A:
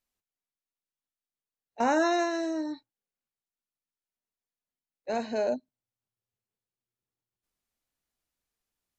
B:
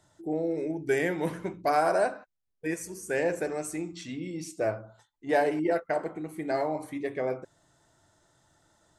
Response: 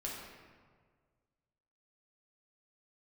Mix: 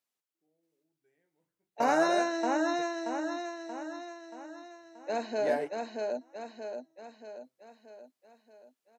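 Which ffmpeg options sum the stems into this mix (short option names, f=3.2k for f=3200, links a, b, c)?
-filter_complex "[0:a]highpass=250,volume=-1.5dB,asplit=3[a][b][c];[b]volume=-3.5dB[d];[1:a]flanger=delay=9.3:depth=5.5:regen=-55:speed=0.33:shape=triangular,adelay=150,volume=-4dB[e];[c]apad=whole_len=402876[f];[e][f]sidechaingate=range=-41dB:threshold=-45dB:ratio=16:detection=peak[g];[d]aecho=0:1:630|1260|1890|2520|3150|3780|4410:1|0.51|0.26|0.133|0.0677|0.0345|0.0176[h];[a][g][h]amix=inputs=3:normalize=0"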